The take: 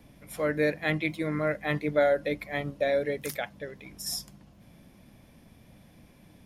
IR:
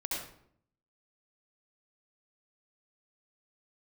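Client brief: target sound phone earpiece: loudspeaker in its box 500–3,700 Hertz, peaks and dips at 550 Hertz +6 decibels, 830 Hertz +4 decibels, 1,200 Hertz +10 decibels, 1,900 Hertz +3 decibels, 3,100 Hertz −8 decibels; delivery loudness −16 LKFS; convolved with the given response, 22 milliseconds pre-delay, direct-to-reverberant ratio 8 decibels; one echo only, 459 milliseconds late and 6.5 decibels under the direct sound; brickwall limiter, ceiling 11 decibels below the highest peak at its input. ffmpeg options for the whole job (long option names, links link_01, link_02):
-filter_complex "[0:a]alimiter=limit=-24dB:level=0:latency=1,aecho=1:1:459:0.473,asplit=2[link_01][link_02];[1:a]atrim=start_sample=2205,adelay=22[link_03];[link_02][link_03]afir=irnorm=-1:irlink=0,volume=-11.5dB[link_04];[link_01][link_04]amix=inputs=2:normalize=0,highpass=500,equalizer=frequency=550:width_type=q:width=4:gain=6,equalizer=frequency=830:width_type=q:width=4:gain=4,equalizer=frequency=1200:width_type=q:width=4:gain=10,equalizer=frequency=1900:width_type=q:width=4:gain=3,equalizer=frequency=3100:width_type=q:width=4:gain=-8,lowpass=frequency=3700:width=0.5412,lowpass=frequency=3700:width=1.3066,volume=16dB"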